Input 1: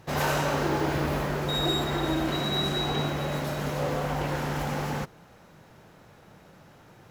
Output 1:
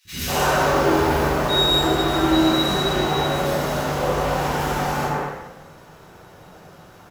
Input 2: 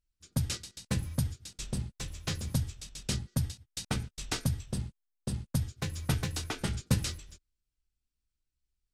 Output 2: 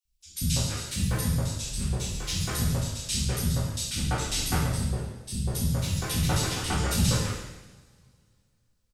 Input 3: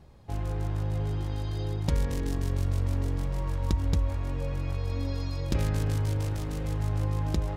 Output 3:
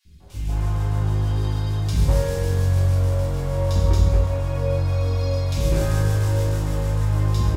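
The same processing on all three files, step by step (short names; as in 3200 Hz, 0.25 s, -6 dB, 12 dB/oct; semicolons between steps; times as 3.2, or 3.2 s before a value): three bands offset in time highs, lows, mids 50/200 ms, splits 260/2300 Hz; two-slope reverb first 0.92 s, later 2.6 s, from -22 dB, DRR -9 dB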